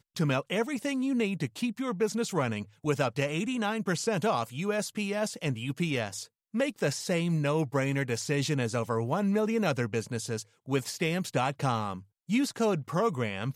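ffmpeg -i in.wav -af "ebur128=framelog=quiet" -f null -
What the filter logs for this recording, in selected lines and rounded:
Integrated loudness:
  I:         -30.1 LUFS
  Threshold: -40.2 LUFS
Loudness range:
  LRA:         2.0 LU
  Threshold: -50.2 LUFS
  LRA low:   -31.0 LUFS
  LRA high:  -29.0 LUFS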